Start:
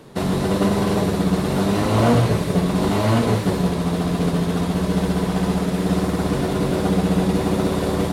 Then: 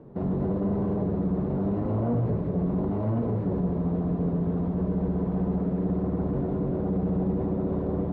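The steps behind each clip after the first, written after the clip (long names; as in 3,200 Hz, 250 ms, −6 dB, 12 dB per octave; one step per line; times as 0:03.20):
brickwall limiter −15.5 dBFS, peak gain reduction 7.5 dB
Bessel low-pass filter 520 Hz, order 2
level −2 dB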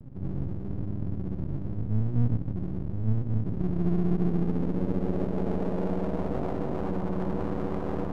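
upward compression, threshold −33 dBFS
low-pass filter sweep 120 Hz → 1,100 Hz, 0:03.32–0:07.01
half-wave rectification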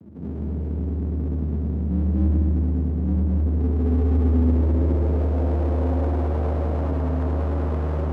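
frequency shifter +76 Hz
on a send: echo machine with several playback heads 105 ms, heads first and second, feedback 61%, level −7 dB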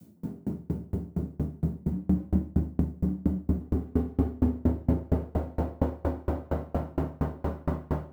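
background noise blue −60 dBFS
rectangular room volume 640 cubic metres, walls furnished, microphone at 7.6 metres
tremolo with a ramp in dB decaying 4.3 Hz, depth 32 dB
level −7.5 dB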